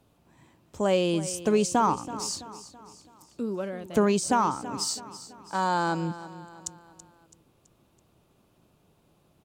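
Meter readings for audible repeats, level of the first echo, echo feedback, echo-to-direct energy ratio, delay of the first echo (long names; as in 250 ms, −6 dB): 4, −15.0 dB, 47%, −14.0 dB, 330 ms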